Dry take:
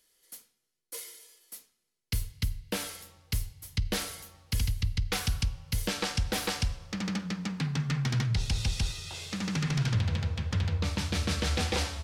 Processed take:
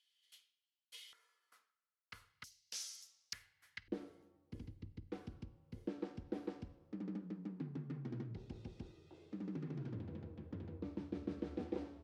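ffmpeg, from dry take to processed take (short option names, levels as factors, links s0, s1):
-af "asetnsamples=n=441:p=0,asendcmd='1.13 bandpass f 1300;2.44 bandpass f 5800;3.33 bandpass f 1700;3.88 bandpass f 320',bandpass=f=3100:t=q:w=4:csg=0"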